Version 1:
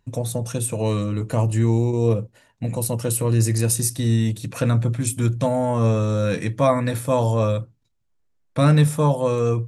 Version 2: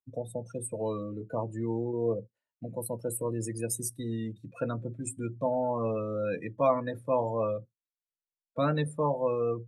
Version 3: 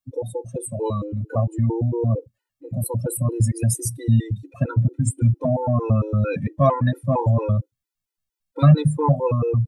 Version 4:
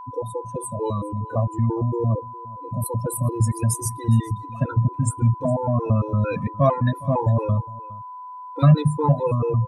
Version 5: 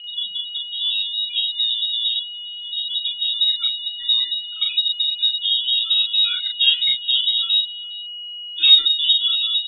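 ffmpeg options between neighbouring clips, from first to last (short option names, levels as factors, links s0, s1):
-filter_complex "[0:a]afftdn=nr=28:nf=-27,bass=f=250:g=-10,treble=f=4000:g=-4,acrossover=split=110|5900[s0][s1][s2];[s0]acompressor=threshold=0.00562:ratio=6[s3];[s3][s1][s2]amix=inputs=3:normalize=0,volume=0.501"
-af "asubboost=boost=7:cutoff=150,acontrast=78,afftfilt=real='re*gt(sin(2*PI*4.4*pts/sr)*(1-2*mod(floor(b*sr/1024/260),2)),0)':imag='im*gt(sin(2*PI*4.4*pts/sr)*(1-2*mod(floor(b*sr/1024/260),2)),0)':win_size=1024:overlap=0.75,volume=1.58"
-af "aeval=exprs='val(0)+0.02*sin(2*PI*1000*n/s)':c=same,aecho=1:1:411:0.0891,volume=0.891"
-filter_complex "[0:a]asplit=2[s0][s1];[s1]adelay=39,volume=0.668[s2];[s0][s2]amix=inputs=2:normalize=0,lowpass=f=3300:t=q:w=0.5098,lowpass=f=3300:t=q:w=0.6013,lowpass=f=3300:t=q:w=0.9,lowpass=f=3300:t=q:w=2.563,afreqshift=-3900"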